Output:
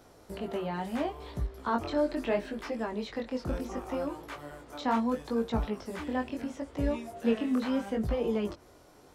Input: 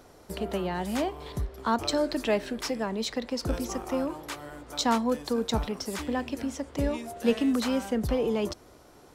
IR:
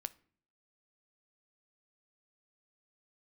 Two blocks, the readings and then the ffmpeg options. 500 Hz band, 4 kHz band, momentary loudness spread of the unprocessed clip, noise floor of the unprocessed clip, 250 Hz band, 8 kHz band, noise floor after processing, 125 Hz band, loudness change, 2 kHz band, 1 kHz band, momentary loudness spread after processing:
−3.0 dB, −10.5 dB, 9 LU, −54 dBFS, −2.5 dB, −15.0 dB, −57 dBFS, −2.5 dB, −3.0 dB, −3.5 dB, −3.0 dB, 9 LU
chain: -filter_complex "[0:a]acrossover=split=3000[link_01][link_02];[link_02]acompressor=threshold=-51dB:ratio=4:attack=1:release=60[link_03];[link_01][link_03]amix=inputs=2:normalize=0,flanger=delay=17:depth=6.7:speed=0.73"

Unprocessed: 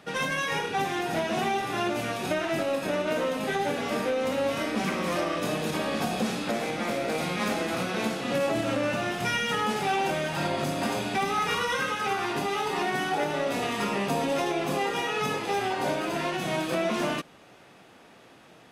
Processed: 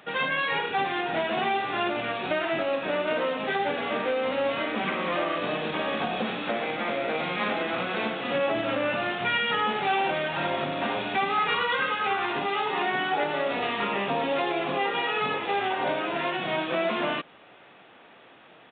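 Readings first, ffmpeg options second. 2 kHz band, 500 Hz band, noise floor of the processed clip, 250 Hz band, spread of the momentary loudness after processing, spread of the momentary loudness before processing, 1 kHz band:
+2.5 dB, +0.5 dB, −52 dBFS, −2.5 dB, 4 LU, 2 LU, +2.0 dB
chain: -af "lowshelf=frequency=280:gain=-11,aresample=8000,aresample=44100,volume=3dB"

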